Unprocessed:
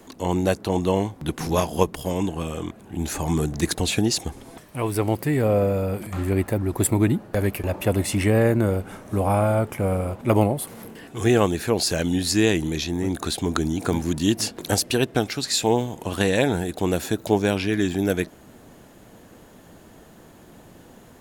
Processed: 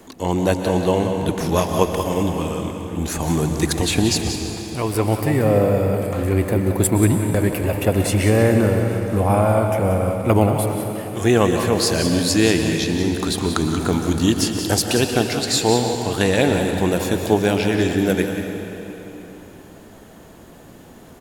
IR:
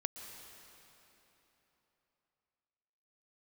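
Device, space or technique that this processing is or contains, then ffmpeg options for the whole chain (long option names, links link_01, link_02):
cave: -filter_complex "[0:a]aecho=1:1:183:0.316[link_01];[1:a]atrim=start_sample=2205[link_02];[link_01][link_02]afir=irnorm=-1:irlink=0,volume=4dB"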